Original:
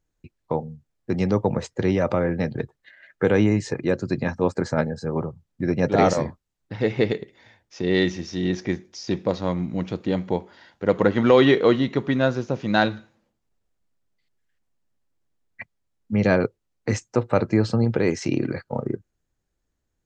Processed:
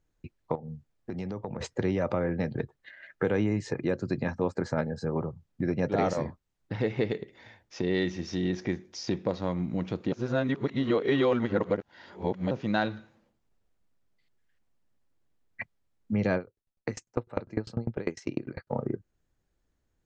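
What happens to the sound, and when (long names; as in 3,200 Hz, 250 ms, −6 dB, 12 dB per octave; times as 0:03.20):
0:00.55–0:01.61: downward compressor, threshold −33 dBFS
0:10.12–0:12.51: reverse
0:16.37–0:18.70: tremolo with a ramp in dB decaying 10 Hz, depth 30 dB
whole clip: high-shelf EQ 5,500 Hz −7 dB; downward compressor 2 to 1, threshold −32 dBFS; level +1.5 dB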